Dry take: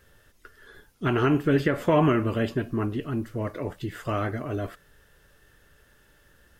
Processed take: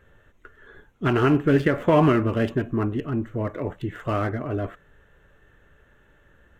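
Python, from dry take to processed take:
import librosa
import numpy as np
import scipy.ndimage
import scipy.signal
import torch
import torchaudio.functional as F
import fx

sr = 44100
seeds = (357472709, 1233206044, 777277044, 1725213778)

y = fx.wiener(x, sr, points=9)
y = y * librosa.db_to_amplitude(3.0)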